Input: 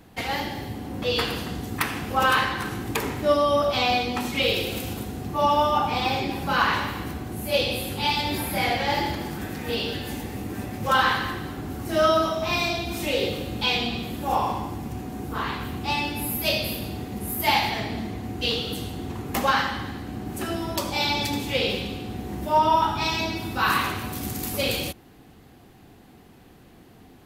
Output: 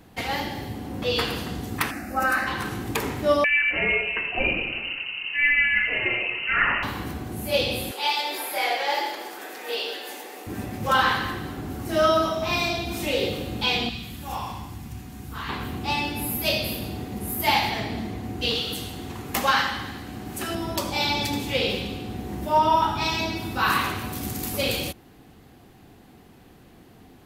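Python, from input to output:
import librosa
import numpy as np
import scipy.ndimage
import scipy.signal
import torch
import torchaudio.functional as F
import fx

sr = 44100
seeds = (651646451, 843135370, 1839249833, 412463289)

y = fx.fixed_phaser(x, sr, hz=660.0, stages=8, at=(1.9, 2.46), fade=0.02)
y = fx.freq_invert(y, sr, carrier_hz=2900, at=(3.44, 6.83))
y = fx.highpass(y, sr, hz=410.0, slope=24, at=(7.91, 10.47))
y = fx.peak_eq(y, sr, hz=480.0, db=-13.0, octaves=2.4, at=(13.89, 15.49))
y = fx.tilt_shelf(y, sr, db=-3.5, hz=970.0, at=(18.55, 20.55))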